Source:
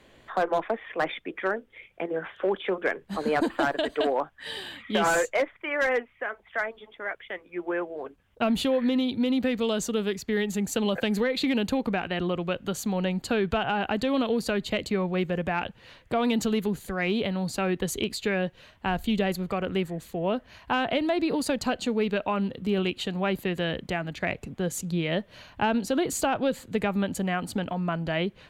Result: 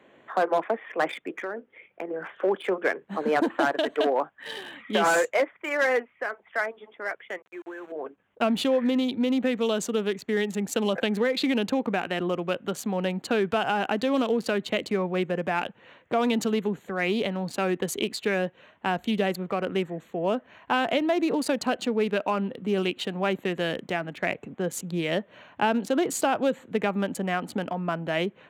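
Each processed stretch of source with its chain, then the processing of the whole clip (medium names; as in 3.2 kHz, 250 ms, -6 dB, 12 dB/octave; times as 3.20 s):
1.43–2.21 s: hum notches 60/120/180 Hz + compression 12:1, threshold -28 dBFS + distance through air 150 m
7.42–7.92 s: cabinet simulation 270–3100 Hz, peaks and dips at 340 Hz +8 dB, 1.1 kHz +5 dB, 1.6 kHz +10 dB, 2.7 kHz +6 dB + compression, threshold -38 dBFS + small samples zeroed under -45 dBFS
whole clip: local Wiener filter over 9 samples; high-pass 210 Hz 12 dB/octave; trim +2 dB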